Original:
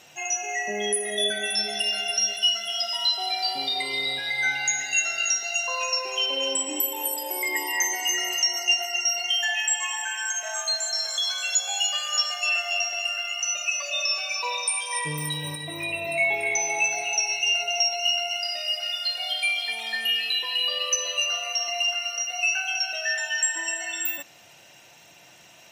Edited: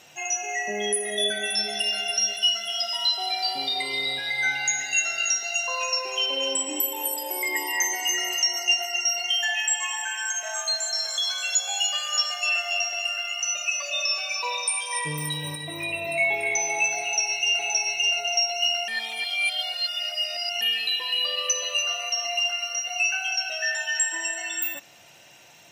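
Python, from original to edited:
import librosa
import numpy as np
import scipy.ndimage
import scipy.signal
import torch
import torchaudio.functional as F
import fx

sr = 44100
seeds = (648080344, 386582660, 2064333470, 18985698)

y = fx.edit(x, sr, fx.repeat(start_s=17.02, length_s=0.57, count=2),
    fx.reverse_span(start_s=18.31, length_s=1.73), tone=tone)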